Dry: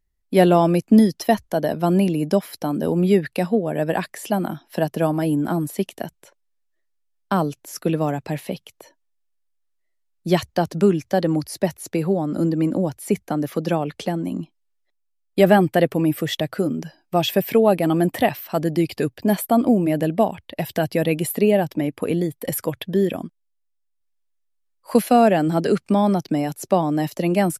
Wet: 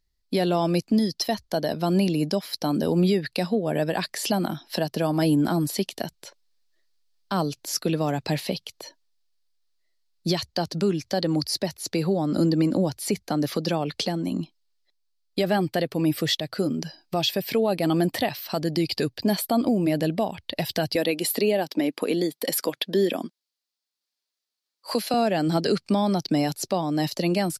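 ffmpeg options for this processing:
-filter_complex "[0:a]asettb=1/sr,asplit=3[a][b][c];[a]atrim=end=20.954[d];[b]atrim=start=20.95:end=25.14,asetpts=PTS-STARTPTS,afade=t=in:d=0.004:c=qsin,afade=t=out:st=4.186:d=0.004:c=qsin,highpass=f=220:w=0.5412,highpass=f=220:w=1.3066[e];[c]atrim=start=25.136[f];[d][e]acrossfade=d=0.004:c1=hsin:c2=qsin[g];[g][f]acrossfade=d=0.004:c1=qsin:c2=hsin,equalizer=f=4.5k:w=1.7:g=14,dynaudnorm=f=160:g=21:m=11.5dB,alimiter=limit=-12dB:level=0:latency=1:release=359,volume=-1.5dB"

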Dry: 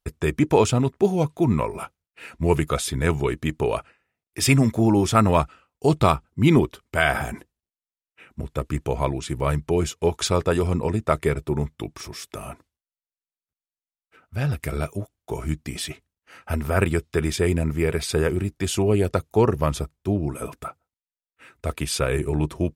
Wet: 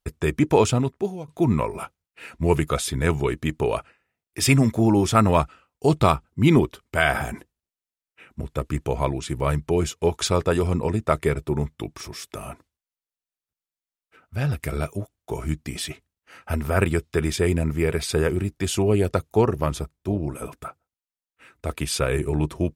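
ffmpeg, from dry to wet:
-filter_complex "[0:a]asettb=1/sr,asplit=3[a][b][c];[a]atrim=end=19.414[d];[b]atrim=start=19.41:end=21.71,asetpts=PTS-STARTPTS,afade=t=in:d=0.004:c=qsin,afade=t=out:st=2.296:d=0.004:c=qsin,tremolo=f=240:d=0.4[e];[c]atrim=start=21.706[f];[d][e]acrossfade=d=0.004:c1=hsin:c2=qsin[g];[g][f]acrossfade=d=0.004:c1=qsin:c2=hsin,asplit=2[h][i];[h]atrim=end=1.28,asetpts=PTS-STARTPTS,afade=t=out:st=0.72:d=0.56:silence=0.0891251[j];[i]atrim=start=1.28,asetpts=PTS-STARTPTS,afade=t=in:d=0.004:c=hsin:silence=0.0891251[k];[j][k]concat=n=2:v=0:a=1"

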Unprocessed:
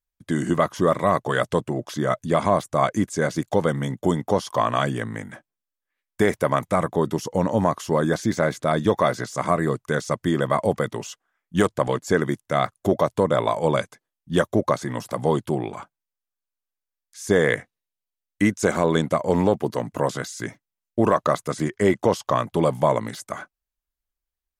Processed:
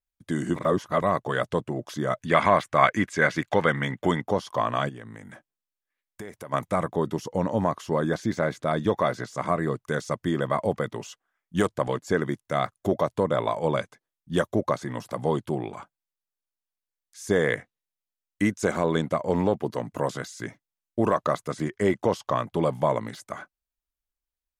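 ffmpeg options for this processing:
-filter_complex "[0:a]asettb=1/sr,asplit=3[a][b][c];[a]atrim=end=2.214[d];[b]atrim=start=2.21:end=4.21,asetpts=PTS-STARTPTS,afade=t=in:d=0.004:c=qsin,afade=t=out:st=1.996:d=0.004:c=qsin,equalizer=f=2k:t=o:w=1.8:g=13.5[e];[c]atrim=start=4.206[f];[d][e]acrossfade=d=0.004:c1=hsin:c2=qsin[g];[g][f]acrossfade=d=0.004:c1=qsin:c2=hsin,asplit=3[h][i][j];[h]afade=t=out:st=4.88:d=0.02[k];[i]acompressor=threshold=-36dB:ratio=3:attack=3.2:release=140:knee=1:detection=peak,afade=t=in:st=4.88:d=0.02,afade=t=out:st=6.52:d=0.02[l];[j]afade=t=in:st=6.52:d=0.02[m];[k][l][m]amix=inputs=3:normalize=0,asplit=3[n][o][p];[n]atrim=end=0.562[q];[o]atrim=start=0.558:end=1.022,asetpts=PTS-STARTPTS,areverse[r];[p]atrim=start=1.018[s];[q][r]acrossfade=d=0.004:c1=hsin:c2=hsin[t];[t][s]acrossfade=d=0.004:c1=hsin:c2=hsin,adynamicequalizer=threshold=0.00562:dfrequency=5200:dqfactor=0.7:tfrequency=5200:tqfactor=0.7:attack=5:release=100:ratio=0.375:range=3.5:mode=cutabove:tftype=highshelf,volume=-4dB"

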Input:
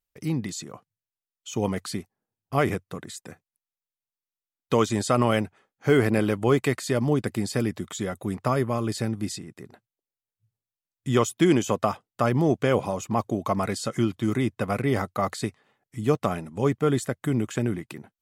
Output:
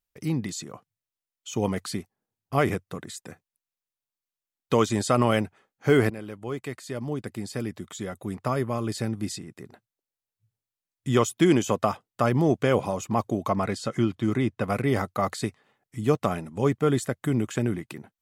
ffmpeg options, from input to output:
-filter_complex "[0:a]asettb=1/sr,asplit=3[a][b][c];[a]atrim=end=13.494[d];[b]atrim=start=13.49:end=14.64,asetpts=PTS-STARTPTS,afade=t=in:d=0.004:c=qsin,afade=t=out:st=1.146:d=0.004:c=qsin,highshelf=f=7.4k:g=-11.5[e];[c]atrim=start=14.636[f];[d][e]acrossfade=d=0.004:c1=hsin:c2=qsin[g];[g][f]acrossfade=d=0.004:c1=qsin:c2=hsin,asplit=2[h][i];[h]atrim=end=6.1,asetpts=PTS-STARTPTS,afade=t=out:st=6.096:d=0.004:c=hsin:silence=0.158489[j];[i]atrim=start=6.1,asetpts=PTS-STARTPTS,afade=t=in:d=3.52:silence=0.158489[k];[j][k]concat=n=2:v=0:a=1"

